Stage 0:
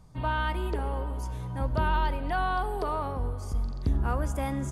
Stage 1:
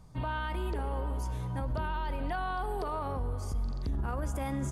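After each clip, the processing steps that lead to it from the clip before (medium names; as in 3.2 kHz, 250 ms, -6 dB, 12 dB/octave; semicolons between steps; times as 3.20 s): peak limiter -25.5 dBFS, peak gain reduction 9.5 dB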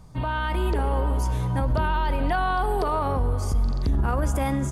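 level rider gain up to 3.5 dB; trim +6.5 dB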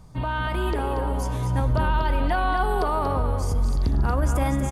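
delay 235 ms -7 dB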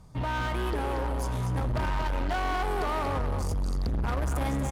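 saturation -25 dBFS, distortion -10 dB; Chebyshev shaper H 7 -25 dB, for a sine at -25 dBFS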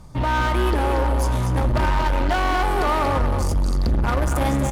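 reverberation RT60 0.15 s, pre-delay 3 ms, DRR 10.5 dB; trim +8.5 dB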